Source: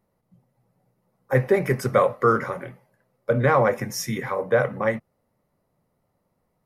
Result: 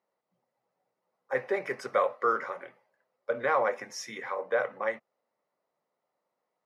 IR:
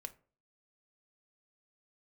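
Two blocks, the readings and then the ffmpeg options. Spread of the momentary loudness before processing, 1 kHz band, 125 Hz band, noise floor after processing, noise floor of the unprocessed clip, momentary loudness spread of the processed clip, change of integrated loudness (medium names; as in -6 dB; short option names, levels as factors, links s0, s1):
13 LU, -6.0 dB, -28.5 dB, -84 dBFS, -73 dBFS, 14 LU, -8.0 dB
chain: -af "highpass=500,lowpass=5600,volume=0.531"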